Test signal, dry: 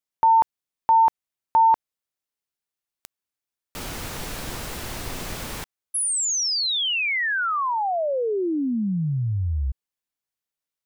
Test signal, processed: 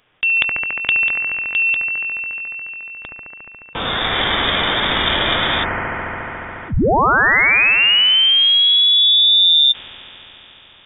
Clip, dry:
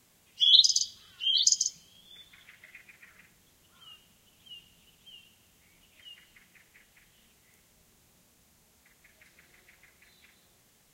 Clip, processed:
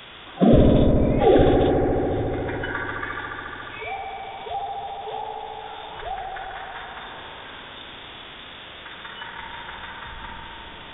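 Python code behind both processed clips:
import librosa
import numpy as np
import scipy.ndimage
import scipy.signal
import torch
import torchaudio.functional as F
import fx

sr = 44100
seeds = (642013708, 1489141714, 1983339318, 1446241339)

p1 = fx.envelope_flatten(x, sr, power=0.6)
p2 = scipy.signal.sosfilt(scipy.signal.butter(2, 48.0, 'highpass', fs=sr, output='sos'), p1)
p3 = fx.rider(p2, sr, range_db=3, speed_s=0.5)
p4 = fx.noise_reduce_blind(p3, sr, reduce_db=10)
p5 = p4 + fx.echo_wet_highpass(p4, sr, ms=71, feedback_pct=83, hz=1800.0, wet_db=-5.0, dry=0)
p6 = fx.freq_invert(p5, sr, carrier_hz=3600)
p7 = fx.env_flatten(p6, sr, amount_pct=50)
y = p7 * librosa.db_to_amplitude(8.5)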